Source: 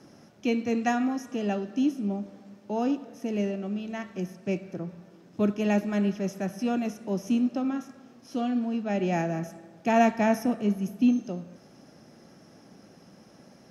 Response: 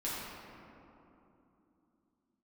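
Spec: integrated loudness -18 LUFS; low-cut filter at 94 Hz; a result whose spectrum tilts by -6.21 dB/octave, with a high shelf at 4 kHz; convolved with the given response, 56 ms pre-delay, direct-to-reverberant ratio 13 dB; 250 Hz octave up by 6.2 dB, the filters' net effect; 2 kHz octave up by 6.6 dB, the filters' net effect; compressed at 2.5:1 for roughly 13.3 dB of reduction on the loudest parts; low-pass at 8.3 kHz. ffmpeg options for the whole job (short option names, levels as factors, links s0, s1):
-filter_complex "[0:a]highpass=94,lowpass=8300,equalizer=f=250:t=o:g=7,equalizer=f=2000:t=o:g=6.5,highshelf=f=4000:g=6.5,acompressor=threshold=0.0282:ratio=2.5,asplit=2[s0][s1];[1:a]atrim=start_sample=2205,adelay=56[s2];[s1][s2]afir=irnorm=-1:irlink=0,volume=0.133[s3];[s0][s3]amix=inputs=2:normalize=0,volume=4.73"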